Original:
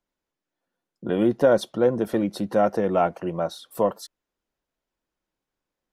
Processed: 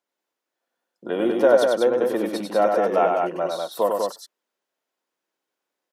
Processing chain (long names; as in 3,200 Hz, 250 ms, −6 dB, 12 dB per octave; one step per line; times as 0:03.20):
high-pass filter 370 Hz 12 dB per octave
on a send: loudspeakers that aren't time-aligned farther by 33 metres −4 dB, 67 metres −4 dB
on the sum: level +1.5 dB